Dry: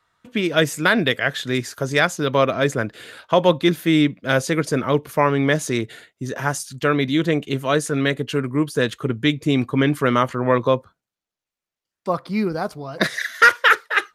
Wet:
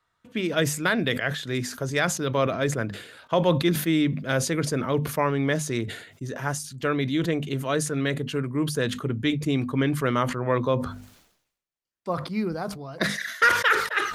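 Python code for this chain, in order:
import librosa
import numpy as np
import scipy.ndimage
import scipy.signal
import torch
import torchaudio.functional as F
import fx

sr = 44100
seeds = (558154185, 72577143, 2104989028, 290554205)

y = fx.low_shelf(x, sr, hz=180.0, db=5.0)
y = fx.hum_notches(y, sr, base_hz=50, count=5)
y = fx.sustainer(y, sr, db_per_s=79.0)
y = y * 10.0 ** (-7.0 / 20.0)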